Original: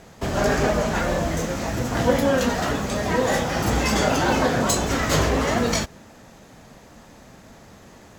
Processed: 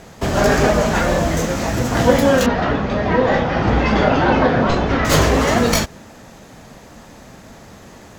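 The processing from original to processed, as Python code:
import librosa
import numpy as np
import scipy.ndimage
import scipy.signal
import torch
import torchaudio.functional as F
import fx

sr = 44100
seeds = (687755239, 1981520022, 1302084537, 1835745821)

y = fx.tracing_dist(x, sr, depth_ms=0.07)
y = fx.gaussian_blur(y, sr, sigma=2.3, at=(2.46, 5.05))
y = y * 10.0 ** (6.0 / 20.0)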